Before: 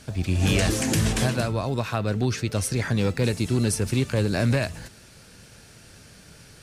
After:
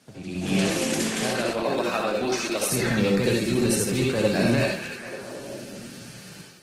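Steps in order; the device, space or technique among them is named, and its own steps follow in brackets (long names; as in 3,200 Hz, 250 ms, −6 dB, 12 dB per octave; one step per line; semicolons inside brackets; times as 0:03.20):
0:00.86–0:02.61: high-pass filter 180 Hz → 390 Hz 12 dB per octave
echo through a band-pass that steps 222 ms, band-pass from 2,700 Hz, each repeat −0.7 octaves, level −6.5 dB
far-field microphone of a smart speaker (convolution reverb RT60 0.30 s, pre-delay 60 ms, DRR −1 dB; high-pass filter 140 Hz 24 dB per octave; automatic gain control gain up to 11 dB; level −8 dB; Opus 16 kbit/s 48,000 Hz)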